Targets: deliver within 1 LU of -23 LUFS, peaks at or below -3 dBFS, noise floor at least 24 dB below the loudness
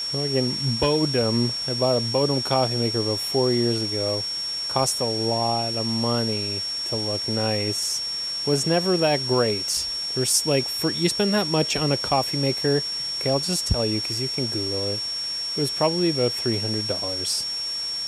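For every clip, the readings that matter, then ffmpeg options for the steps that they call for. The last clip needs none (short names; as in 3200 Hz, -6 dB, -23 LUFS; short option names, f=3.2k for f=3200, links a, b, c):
steady tone 5500 Hz; tone level -26 dBFS; noise floor -29 dBFS; noise floor target -47 dBFS; loudness -22.5 LUFS; peak -6.5 dBFS; loudness target -23.0 LUFS
-> -af "bandreject=f=5.5k:w=30"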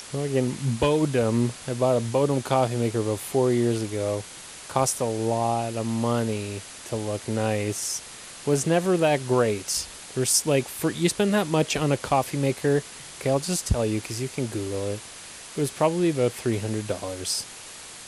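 steady tone none; noise floor -42 dBFS; noise floor target -49 dBFS
-> -af "afftdn=nr=7:nf=-42"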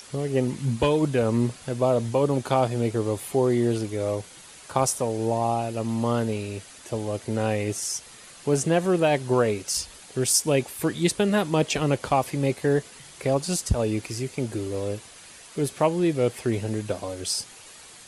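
noise floor -47 dBFS; noise floor target -50 dBFS
-> -af "afftdn=nr=6:nf=-47"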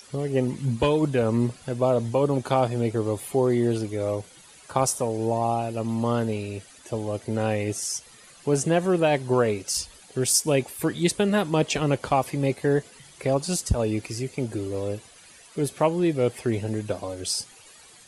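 noise floor -51 dBFS; loudness -25.5 LUFS; peak -7.0 dBFS; loudness target -23.0 LUFS
-> -af "volume=2.5dB"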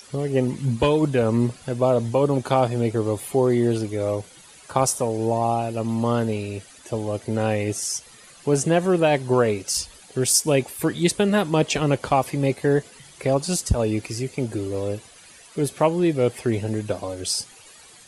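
loudness -23.0 LUFS; peak -4.5 dBFS; noise floor -48 dBFS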